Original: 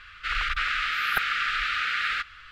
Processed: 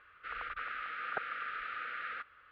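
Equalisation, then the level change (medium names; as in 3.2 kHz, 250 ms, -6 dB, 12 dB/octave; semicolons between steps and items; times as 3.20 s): band-pass filter 530 Hz, Q 1.6; distance through air 210 m; +1.5 dB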